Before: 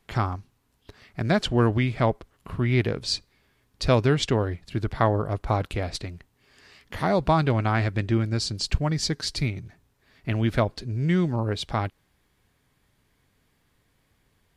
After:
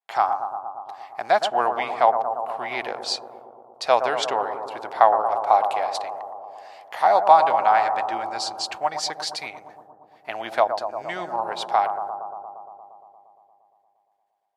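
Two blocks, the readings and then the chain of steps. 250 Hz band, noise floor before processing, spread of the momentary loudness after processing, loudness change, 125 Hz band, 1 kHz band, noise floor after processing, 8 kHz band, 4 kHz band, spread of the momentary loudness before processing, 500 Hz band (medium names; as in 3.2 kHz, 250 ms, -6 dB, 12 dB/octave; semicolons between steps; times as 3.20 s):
-15.5 dB, -69 dBFS, 17 LU, +3.0 dB, under -25 dB, +12.0 dB, -67 dBFS, 0.0 dB, +0.5 dB, 11 LU, +3.5 dB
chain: expander -53 dBFS; resonant high-pass 770 Hz, resonance Q 4.8; on a send: bucket-brigade echo 116 ms, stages 1024, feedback 77%, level -8 dB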